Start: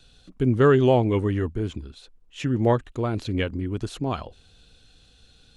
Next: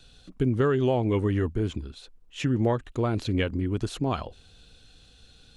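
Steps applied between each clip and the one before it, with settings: compression 6:1, threshold -21 dBFS, peak gain reduction 8.5 dB; trim +1 dB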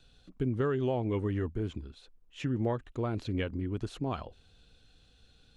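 treble shelf 4.7 kHz -7 dB; trim -6.5 dB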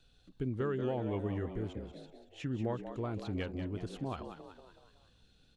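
frequency-shifting echo 187 ms, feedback 49%, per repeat +85 Hz, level -9.5 dB; trim -5 dB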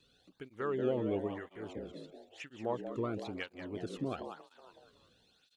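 cancelling through-zero flanger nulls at 1 Hz, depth 1.4 ms; trim +4 dB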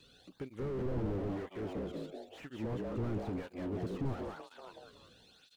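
slew-rate limiter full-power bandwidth 2.7 Hz; trim +7 dB

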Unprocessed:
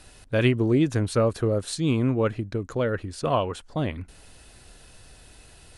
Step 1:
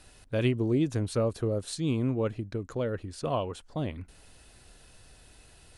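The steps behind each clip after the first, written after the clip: dynamic bell 1.6 kHz, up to -6 dB, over -40 dBFS, Q 1.1; trim -5 dB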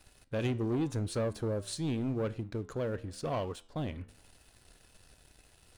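waveshaping leveller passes 2; flange 0.86 Hz, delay 9.8 ms, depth 5.2 ms, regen -86%; trim -5 dB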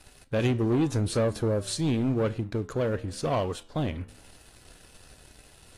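trim +7 dB; AAC 48 kbps 32 kHz

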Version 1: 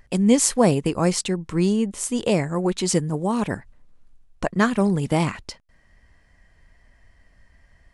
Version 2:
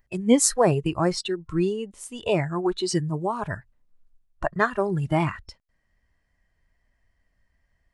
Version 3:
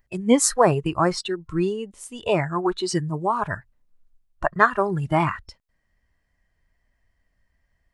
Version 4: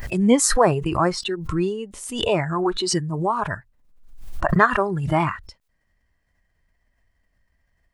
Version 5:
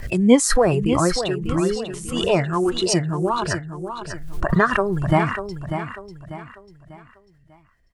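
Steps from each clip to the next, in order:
spectral noise reduction 14 dB
dynamic bell 1.2 kHz, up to +8 dB, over -39 dBFS, Q 1.1
swell ahead of each attack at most 61 dB/s
rotary cabinet horn 5 Hz; on a send: feedback delay 594 ms, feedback 38%, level -9 dB; on the sum: trim +3.5 dB

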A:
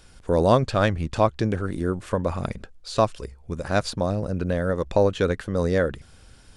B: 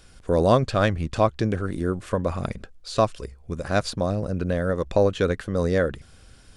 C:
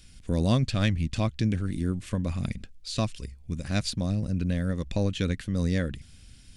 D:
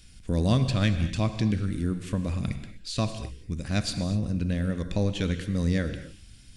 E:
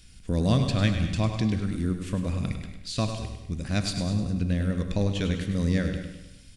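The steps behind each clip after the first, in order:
band-stop 890 Hz, Q 12
high-order bell 750 Hz -13 dB 2.4 oct
gated-style reverb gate 270 ms flat, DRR 8.5 dB
feedback delay 101 ms, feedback 50%, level -9 dB

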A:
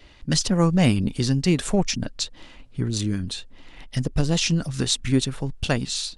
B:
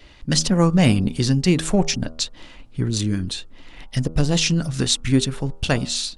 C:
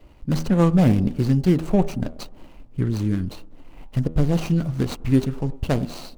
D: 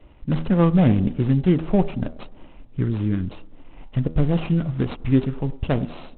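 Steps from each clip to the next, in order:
de-hum 79.96 Hz, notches 18; trim +3 dB
median filter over 25 samples; feedback echo behind a band-pass 99 ms, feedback 58%, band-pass 470 Hz, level -20 dB
µ-law 64 kbps 8 kHz

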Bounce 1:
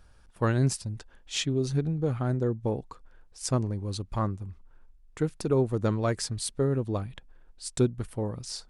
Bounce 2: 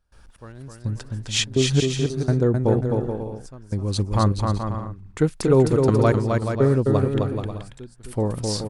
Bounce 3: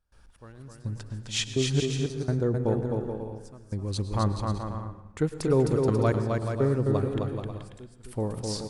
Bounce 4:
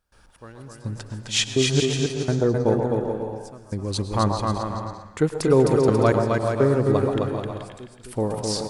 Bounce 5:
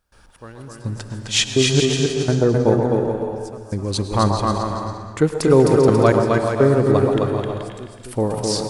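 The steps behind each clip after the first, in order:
trance gate ".xx....xxxxx" 125 bpm -24 dB; on a send: bouncing-ball echo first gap 260 ms, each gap 0.65×, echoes 5; on the sum: trim +8 dB
plate-style reverb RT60 0.95 s, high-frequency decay 0.65×, pre-delay 90 ms, DRR 12 dB; trim -6.5 dB
bass shelf 120 Hz -9 dB; on a send: repeats whose band climbs or falls 131 ms, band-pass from 770 Hz, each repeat 1.4 oct, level -3 dB; on the sum: trim +7 dB
gated-style reverb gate 350 ms rising, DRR 11 dB; trim +4 dB

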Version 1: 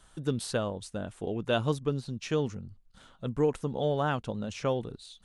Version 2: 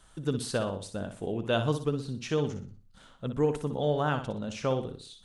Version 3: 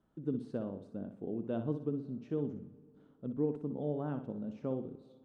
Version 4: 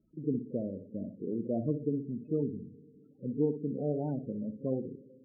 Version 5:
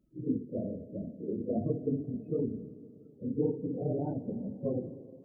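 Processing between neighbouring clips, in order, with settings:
flutter echo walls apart 10.4 m, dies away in 0.4 s
band-pass filter 260 Hz, Q 1.5; on a send at -21 dB: reverberation RT60 2.4 s, pre-delay 120 ms; on the sum: trim -2 dB
pre-echo 39 ms -18 dB; loudest bins only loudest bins 16; trim +3.5 dB
phase randomisation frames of 50 ms; algorithmic reverb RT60 2.8 s, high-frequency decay 0.8×, pre-delay 105 ms, DRR 15.5 dB

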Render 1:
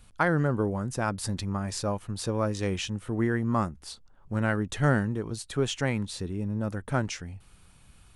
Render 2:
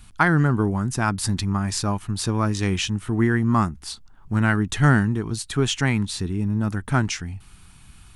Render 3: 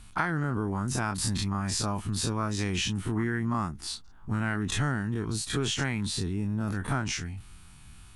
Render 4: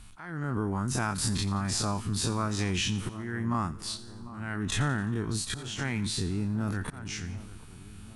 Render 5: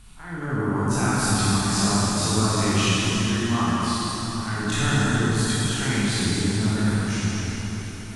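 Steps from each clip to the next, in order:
peaking EQ 530 Hz -14.5 dB 0.51 oct; trim +8 dB
every event in the spectrogram widened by 60 ms; compression 6:1, threshold -18 dBFS, peak gain reduction 9 dB; trim -6.5 dB
slow attack 417 ms; two-band feedback delay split 1.3 kHz, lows 747 ms, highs 87 ms, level -15.5 dB
reverberation RT60 4.2 s, pre-delay 18 ms, DRR -8.5 dB

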